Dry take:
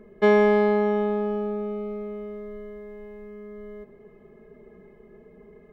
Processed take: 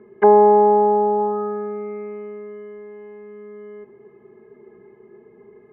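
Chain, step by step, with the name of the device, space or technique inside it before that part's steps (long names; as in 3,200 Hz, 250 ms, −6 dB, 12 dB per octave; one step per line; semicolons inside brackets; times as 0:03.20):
envelope filter bass rig (envelope-controlled low-pass 770–4,100 Hz down, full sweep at −20.5 dBFS; loudspeaker in its box 75–2,100 Hz, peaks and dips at 79 Hz −10 dB, 120 Hz +8 dB, 170 Hz −9 dB, 370 Hz +8 dB, 600 Hz −8 dB, 890 Hz +7 dB)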